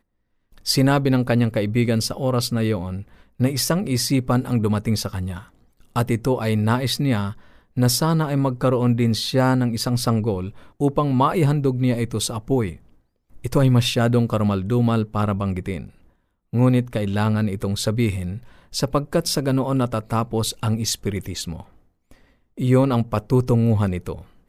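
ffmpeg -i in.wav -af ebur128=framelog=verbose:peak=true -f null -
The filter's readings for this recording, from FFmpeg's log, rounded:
Integrated loudness:
  I:         -21.3 LUFS
  Threshold: -31.9 LUFS
Loudness range:
  LRA:         2.8 LU
  Threshold: -42.0 LUFS
  LRA low:   -23.4 LUFS
  LRA high:  -20.6 LUFS
True peak:
  Peak:       -5.2 dBFS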